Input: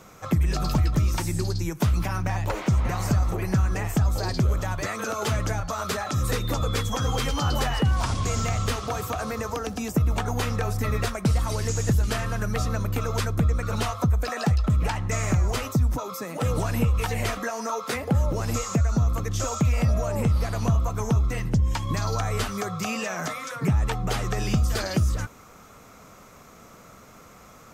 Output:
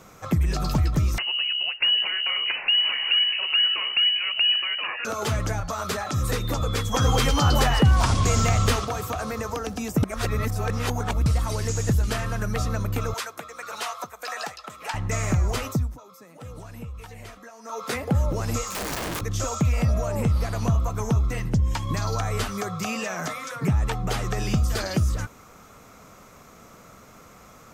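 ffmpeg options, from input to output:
-filter_complex "[0:a]asettb=1/sr,asplit=3[a][b][c];[a]atrim=end=1.184[d];[b]atrim=start=1.18:end=5.05,asetpts=PTS-STARTPTS,afade=t=in:d=0.004:c=qsin,afade=t=out:st=3.866:d=0.004:c=qsin,lowpass=f=2.6k:t=q:w=0.5098,lowpass=f=2.6k:t=q:w=0.6013,lowpass=f=2.6k:t=q:w=0.9,lowpass=f=2.6k:t=q:w=2.563,afreqshift=-3000[e];[c]atrim=start=5.046[f];[d][e]acrossfade=d=0.004:c1=hsin:c2=qsin[g];[g][f]acrossfade=d=0.004:c1=qsin:c2=hsin,asettb=1/sr,asplit=3[h][i][j];[h]atrim=end=6.944[k];[i]atrim=start=6.94:end=8.85,asetpts=PTS-STARTPTS,afade=t=in:d=0.004:c=qsin,afade=t=out:st=1.906:d=0.004:c=qsin,acontrast=28[l];[j]atrim=start=8.846[m];[k][l]acrossfade=d=0.004:c1=hsin:c2=qsin[n];[n][m]acrossfade=d=0.004:c1=qsin:c2=hsin,asettb=1/sr,asplit=3[o][p][q];[o]atrim=end=13.144[r];[p]atrim=start=13.14:end=14.94,asetpts=PTS-STARTPTS,afade=t=in:d=0.004:c=qsin,afade=t=out:st=1.796:d=0.004:c=qsin,highpass=740[s];[q]atrim=start=14.936[t];[r][s]acrossfade=d=0.004:c1=hsin:c2=qsin[u];[u][t]acrossfade=d=0.004:c1=qsin:c2=hsin,asplit=3[v][w][x];[v]afade=t=out:st=18.67:d=0.02[y];[w]aeval=exprs='(mod(17.8*val(0)+1,2)-1)/17.8':c=same,afade=t=in:st=18.67:d=0.02,afade=t=out:st=19.2:d=0.02[z];[x]afade=t=in:st=19.2:d=0.02[aa];[y][z][aa]amix=inputs=3:normalize=0,asplit=5[ab][ac][ad][ae][af];[ab]atrim=end=10.032[ag];[ac]atrim=start=10.028:end=11.262,asetpts=PTS-STARTPTS,areverse[ah];[ad]atrim=start=11.258:end=15.94,asetpts=PTS-STARTPTS,afade=t=out:st=4.462:d=0.22:silence=0.177828[ai];[ae]atrim=start=15.94:end=17.63,asetpts=PTS-STARTPTS,volume=-15dB[aj];[af]atrim=start=17.63,asetpts=PTS-STARTPTS,afade=t=in:d=0.22:silence=0.177828[ak];[ag][ah]acrossfade=d=0.004:c1=hsin:c2=hsin[al];[ai][aj][ak]concat=n=3:v=0:a=1[am];[al][am]acrossfade=d=0.004:c1=hsin:c2=hsin"

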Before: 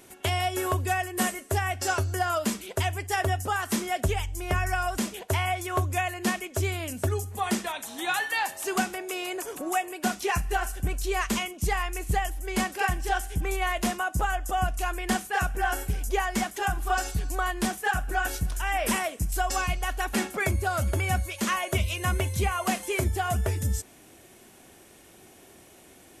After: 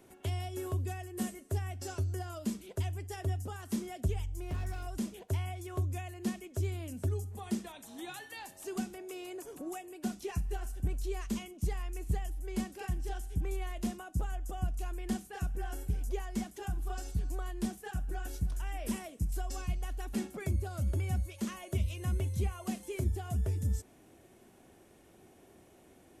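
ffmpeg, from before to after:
-filter_complex "[0:a]asettb=1/sr,asplit=3[a][b][c];[a]atrim=end=4.284[d];[b]atrim=start=4.28:end=4.87,asetpts=PTS-STARTPTS,afade=t=in:d=0.004:c=qsin,afade=t=out:st=0.586:d=0.004:c=qsin,asoftclip=type=hard:threshold=-25.5dB[e];[c]atrim=start=4.866[f];[d][e]acrossfade=d=0.004:c1=hsin:c2=qsin[g];[g][f]acrossfade=d=0.004:c1=qsin:c2=hsin,acrossover=split=370|3000[h][i][j];[i]acompressor=threshold=-49dB:ratio=2[k];[h][k][j]amix=inputs=3:normalize=0,tiltshelf=f=1.3k:g=5,volume=-9dB"

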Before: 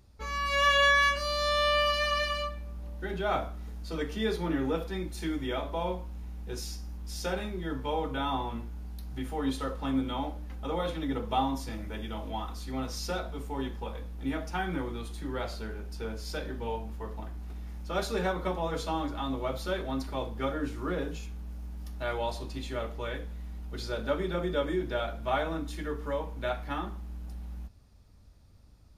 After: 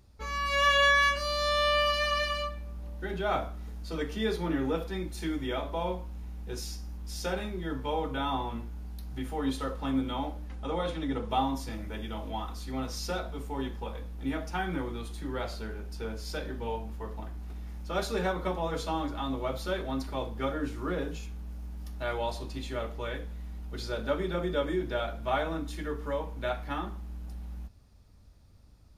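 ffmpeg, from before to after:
-filter_complex "[0:a]asettb=1/sr,asplit=3[a][b][c];[a]atrim=end=10.484[d];[b]atrim=start=10.48:end=11.3,asetpts=PTS-STARTPTS,afade=t=in:d=0.004:c=qsin,afade=t=out:st=0.816:d=0.004:c=qsin,lowpass=f=11k:w=0.5412,lowpass=f=11k:w=1.3066[e];[c]atrim=start=11.296[f];[d][e]acrossfade=d=0.004:c1=hsin:c2=qsin[g];[g][f]acrossfade=d=0.004:c1=qsin:c2=hsin"

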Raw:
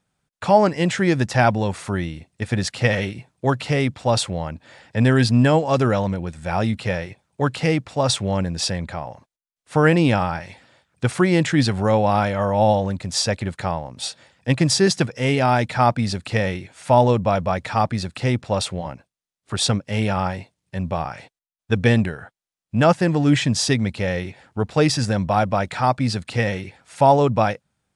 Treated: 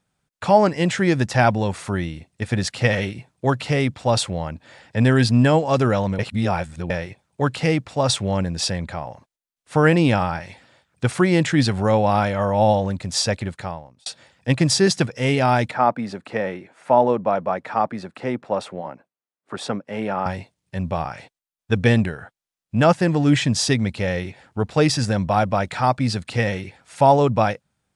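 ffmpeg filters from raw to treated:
-filter_complex "[0:a]asettb=1/sr,asplit=3[a][b][c];[a]atrim=end=15.714[d];[b]atrim=start=15.71:end=20.26,asetpts=PTS-STARTPTS,afade=t=in:d=0.004:c=qsin,afade=t=out:st=4.546:d=0.004:c=qsin,acrossover=split=190 2000:gain=0.0708 1 0.2[e][f][g];[e][f][g]amix=inputs=3:normalize=0[h];[c]atrim=start=20.256[i];[d][h]acrossfade=d=0.004:c1=hsin:c2=qsin[j];[j][i]acrossfade=d=0.004:c1=qsin:c2=hsin,asplit=4[k][l][m][n];[k]atrim=end=6.192[o];[l]atrim=start=6.188:end=6.902,asetpts=PTS-STARTPTS,areverse[p];[m]atrim=start=6.898:end=14.06,asetpts=PTS-STARTPTS,afade=t=out:st=6.452:d=0.71[q];[n]atrim=start=14.06,asetpts=PTS-STARTPTS,afade=t=in:d=0.004:c=hsin[r];[o][p]acrossfade=d=0.004:c1=hsin:c2=hsin[s];[q][r]concat=n=2:v=0:a=1[t];[s][t]acrossfade=d=0.004:c1=hsin:c2=hsin"

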